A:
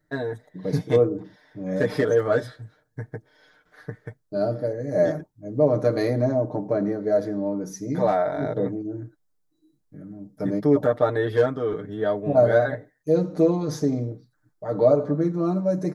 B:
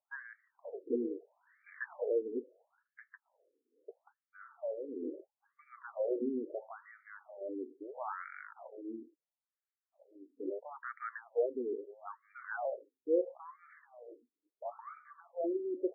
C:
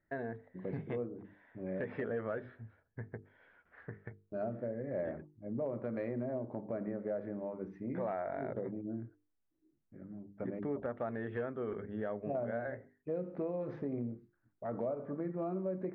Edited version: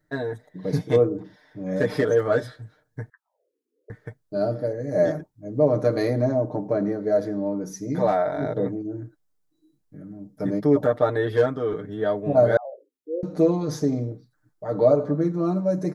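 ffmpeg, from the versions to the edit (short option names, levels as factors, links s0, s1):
-filter_complex "[1:a]asplit=2[s0][s1];[0:a]asplit=3[s2][s3][s4];[s2]atrim=end=3.102[s5];[s0]atrim=start=3.098:end=3.902[s6];[s3]atrim=start=3.898:end=12.572[s7];[s1]atrim=start=12.568:end=13.232[s8];[s4]atrim=start=13.228[s9];[s5][s6]acrossfade=d=0.004:c1=hsin:c2=hsin[s10];[s10][s7]acrossfade=d=0.004:c1=hsin:c2=hsin[s11];[s11][s8]acrossfade=d=0.004:c1=hsin:c2=hsin[s12];[s12][s9]acrossfade=d=0.004:c1=hsin:c2=hsin"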